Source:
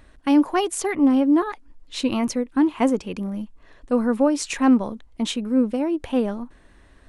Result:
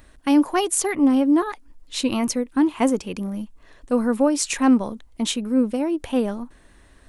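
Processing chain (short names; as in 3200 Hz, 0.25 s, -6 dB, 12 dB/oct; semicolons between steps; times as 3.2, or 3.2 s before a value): high shelf 6800 Hz +11 dB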